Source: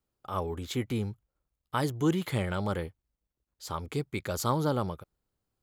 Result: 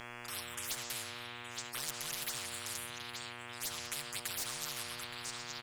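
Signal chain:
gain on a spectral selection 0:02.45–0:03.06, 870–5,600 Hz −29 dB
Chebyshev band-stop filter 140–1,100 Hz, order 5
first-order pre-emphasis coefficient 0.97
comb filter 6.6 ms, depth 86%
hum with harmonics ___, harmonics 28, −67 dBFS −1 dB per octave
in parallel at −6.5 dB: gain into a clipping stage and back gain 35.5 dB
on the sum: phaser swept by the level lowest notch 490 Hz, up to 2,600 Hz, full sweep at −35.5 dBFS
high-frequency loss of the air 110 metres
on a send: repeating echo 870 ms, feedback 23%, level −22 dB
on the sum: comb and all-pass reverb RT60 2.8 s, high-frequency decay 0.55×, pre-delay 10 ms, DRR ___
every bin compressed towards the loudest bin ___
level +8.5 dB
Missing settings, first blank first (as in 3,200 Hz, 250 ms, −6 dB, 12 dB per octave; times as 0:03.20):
120 Hz, 16.5 dB, 10 to 1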